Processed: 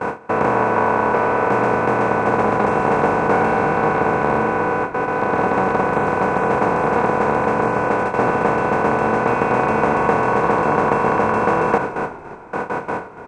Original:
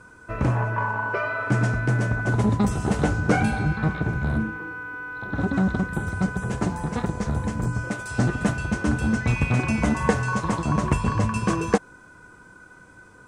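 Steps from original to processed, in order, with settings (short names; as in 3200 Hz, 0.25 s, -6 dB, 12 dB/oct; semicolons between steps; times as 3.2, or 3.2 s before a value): per-bin compression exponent 0.2; gate with hold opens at -8 dBFS; band-pass 790 Hz, Q 1.1; on a send: frequency-shifting echo 0.286 s, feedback 44%, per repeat -42 Hz, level -14.5 dB; on the sum: gain +3.5 dB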